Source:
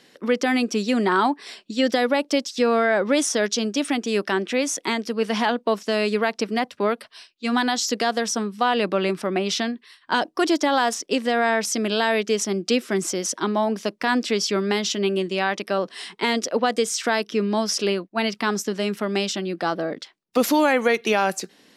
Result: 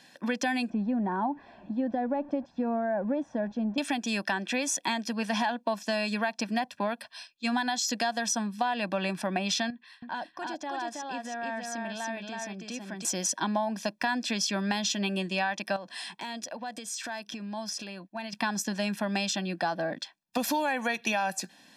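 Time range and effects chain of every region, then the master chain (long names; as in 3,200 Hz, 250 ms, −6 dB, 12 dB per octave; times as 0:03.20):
0:00.70–0:03.78: converter with a step at zero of −34.5 dBFS + Bessel low-pass filter 540 Hz
0:09.70–0:13.05: low-pass filter 2,700 Hz 6 dB per octave + downward compressor 2 to 1, threshold −41 dBFS + single-tap delay 323 ms −3 dB
0:15.76–0:18.33: downward compressor 4 to 1, threshold −33 dBFS + hard clipping −24.5 dBFS
whole clip: low-shelf EQ 78 Hz −11.5 dB; comb filter 1.2 ms, depth 81%; downward compressor, threshold −22 dBFS; level −3 dB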